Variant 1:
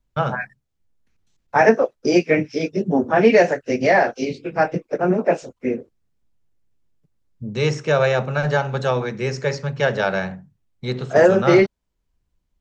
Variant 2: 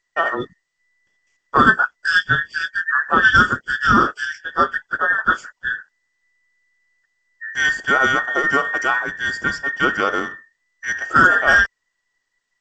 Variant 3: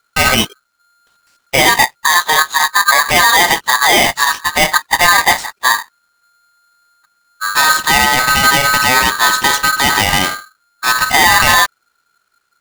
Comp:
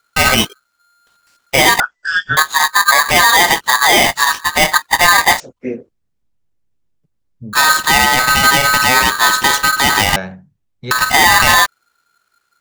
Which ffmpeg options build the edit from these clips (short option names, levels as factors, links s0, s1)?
-filter_complex "[0:a]asplit=2[s0][s1];[2:a]asplit=4[s2][s3][s4][s5];[s2]atrim=end=1.802[s6];[1:a]atrim=start=1.798:end=2.372[s7];[s3]atrim=start=2.368:end=5.402[s8];[s0]atrim=start=5.398:end=7.532[s9];[s4]atrim=start=7.528:end=10.162[s10];[s1]atrim=start=10.158:end=10.912[s11];[s5]atrim=start=10.908[s12];[s6][s7]acrossfade=d=0.004:c1=hsin:c2=hsin[s13];[s13][s8]acrossfade=d=0.004:c1=hsin:c2=hsin[s14];[s14][s9]acrossfade=d=0.004:c1=hsin:c2=hsin[s15];[s15][s10]acrossfade=d=0.004:c1=hsin:c2=hsin[s16];[s16][s11]acrossfade=d=0.004:c1=hsin:c2=hsin[s17];[s17][s12]acrossfade=d=0.004:c1=hsin:c2=hsin"